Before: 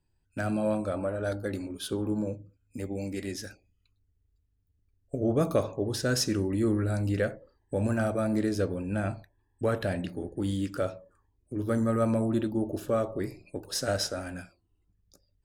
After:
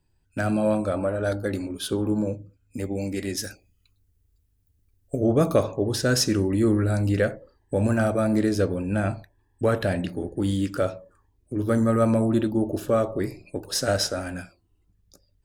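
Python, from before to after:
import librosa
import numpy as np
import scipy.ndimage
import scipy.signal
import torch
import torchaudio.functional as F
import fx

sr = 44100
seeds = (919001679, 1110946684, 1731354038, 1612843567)

y = fx.high_shelf(x, sr, hz=6900.0, db=10.5, at=(3.37, 5.27))
y = y * 10.0 ** (5.5 / 20.0)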